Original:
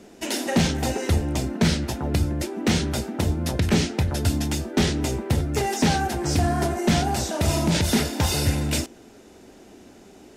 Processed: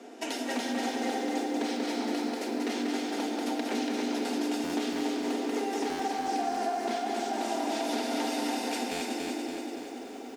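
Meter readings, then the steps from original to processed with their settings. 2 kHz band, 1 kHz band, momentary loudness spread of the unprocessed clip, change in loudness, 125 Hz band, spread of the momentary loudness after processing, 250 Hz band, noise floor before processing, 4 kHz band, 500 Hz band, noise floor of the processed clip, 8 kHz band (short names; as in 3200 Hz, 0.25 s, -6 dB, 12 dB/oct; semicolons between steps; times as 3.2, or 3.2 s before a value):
-6.5 dB, -2.5 dB, 5 LU, -8.0 dB, -32.5 dB, 3 LU, -6.0 dB, -49 dBFS, -8.0 dB, -4.5 dB, -41 dBFS, -10.5 dB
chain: Chebyshev high-pass 240 Hz, order 6; bell 780 Hz +7 dB 0.24 oct; feedback echo 0.187 s, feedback 36%, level -4 dB; shoebox room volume 3400 m³, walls mixed, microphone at 1.7 m; compressor 6:1, threshold -31 dBFS, peak gain reduction 16.5 dB; high shelf 8900 Hz -10.5 dB; stuck buffer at 4.63/5.89/8.91, samples 512, times 8; lo-fi delay 0.285 s, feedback 55%, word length 10-bit, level -3.5 dB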